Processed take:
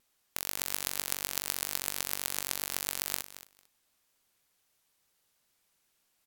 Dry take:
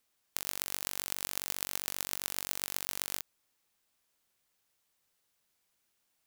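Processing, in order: feedback delay 224 ms, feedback 15%, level -14 dB; vibrato 4.3 Hz 65 cents; trim +3 dB; SBC 128 kbps 48 kHz

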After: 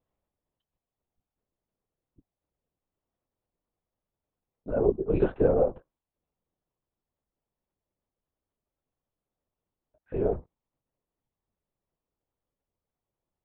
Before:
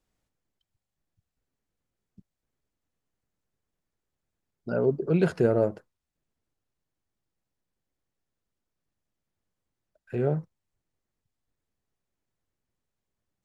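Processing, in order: high-order bell 540 Hz +9.5 dB 2.4 oct; LPC vocoder at 8 kHz whisper; trim -8.5 dB

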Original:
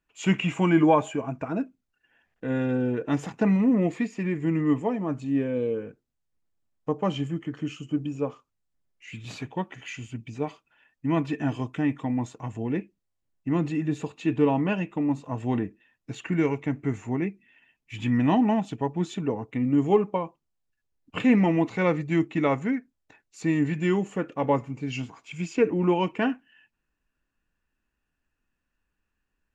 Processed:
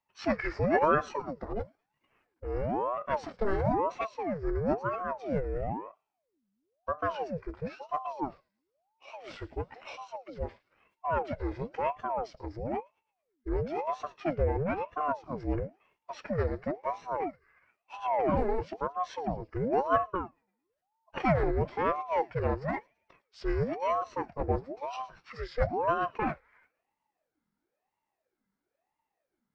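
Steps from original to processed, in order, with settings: feedback echo behind a high-pass 111 ms, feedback 50%, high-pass 2.6 kHz, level -19 dB; formant shift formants -6 st; ring modulator with a swept carrier 550 Hz, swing 65%, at 1 Hz; trim -2.5 dB

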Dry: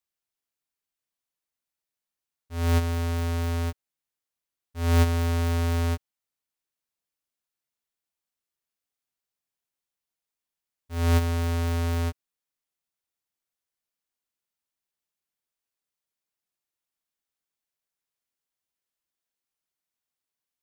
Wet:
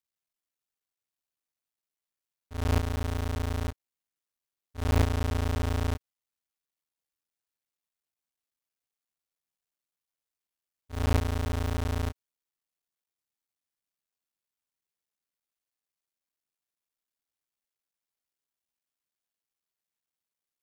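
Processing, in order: cycle switcher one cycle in 3, muted; loudspeaker Doppler distortion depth 0.91 ms; trim -2 dB

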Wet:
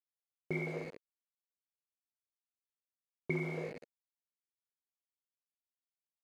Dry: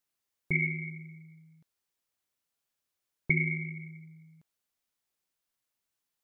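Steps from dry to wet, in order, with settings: bit crusher 6-bit; band-pass filter 470 Hz, Q 2.6; trim +8.5 dB

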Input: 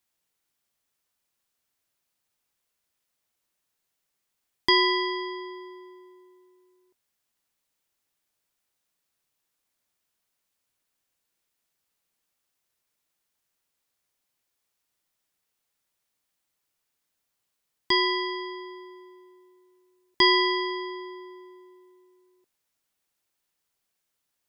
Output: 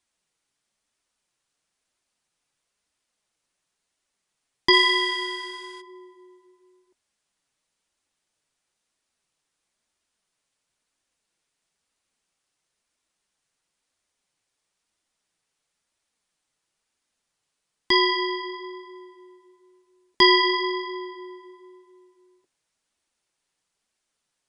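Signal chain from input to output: 4.72–5.80 s: formants flattened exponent 0.3; flange 1 Hz, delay 2.7 ms, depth 4.9 ms, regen -38%; resampled via 22.05 kHz; trim +7 dB

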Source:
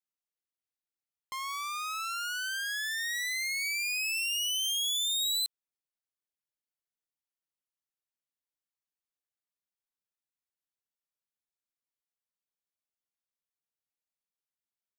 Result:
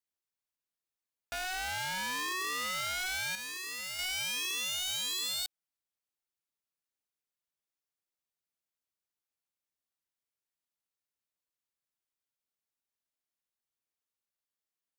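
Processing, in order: 3.35–3.99 s: amplifier tone stack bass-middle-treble 5-5-5; peak limiter -30.5 dBFS, peak gain reduction 5 dB; polarity switched at an audio rate 370 Hz

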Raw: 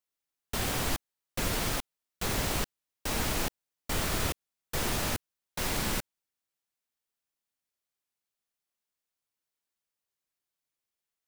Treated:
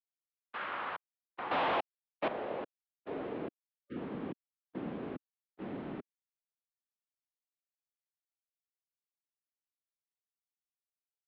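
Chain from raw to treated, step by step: gate -33 dBFS, range -26 dB; band-pass sweep 1.8 kHz -> 430 Hz, 0.11–3.93 s; 1.51–2.28 s: waveshaping leveller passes 5; mistuned SSB -180 Hz 360–3600 Hz; 3.67–3.96 s: spectral selection erased 580–1200 Hz; trim +3 dB

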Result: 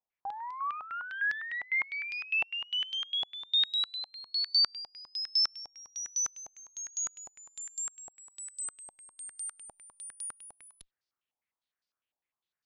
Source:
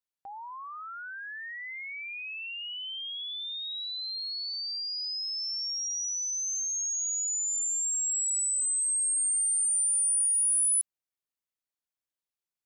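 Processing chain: Chebyshev shaper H 6 -27 dB, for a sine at -21.5 dBFS; step-sequenced low-pass 9.9 Hz 800–4800 Hz

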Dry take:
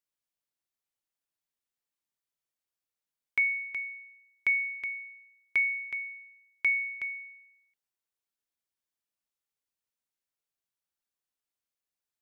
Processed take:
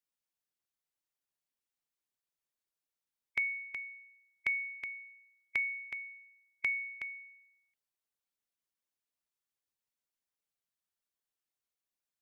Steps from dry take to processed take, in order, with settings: harmonic-percussive split harmonic -7 dB

